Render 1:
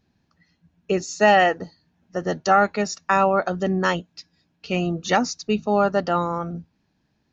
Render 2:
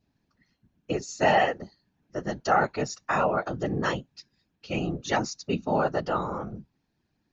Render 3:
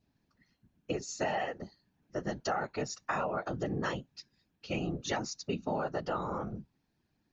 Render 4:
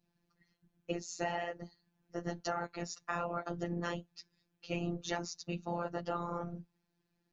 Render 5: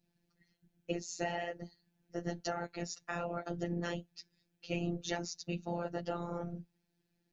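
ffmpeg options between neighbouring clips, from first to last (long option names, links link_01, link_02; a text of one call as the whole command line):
ffmpeg -i in.wav -af "afftfilt=real='hypot(re,im)*cos(2*PI*random(0))':imag='hypot(re,im)*sin(2*PI*random(1))':win_size=512:overlap=0.75,adynamicequalizer=threshold=0.01:dfrequency=1600:dqfactor=2.4:tfrequency=1600:tqfactor=2.4:attack=5:release=100:ratio=0.375:range=2:mode=cutabove:tftype=bell" out.wav
ffmpeg -i in.wav -af "acompressor=threshold=-28dB:ratio=6,volume=-2dB" out.wav
ffmpeg -i in.wav -af "afftfilt=real='hypot(re,im)*cos(PI*b)':imag='0':win_size=1024:overlap=0.75" out.wav
ffmpeg -i in.wav -af "equalizer=frequency=1100:width_type=o:width=0.56:gain=-10.5,volume=1dB" out.wav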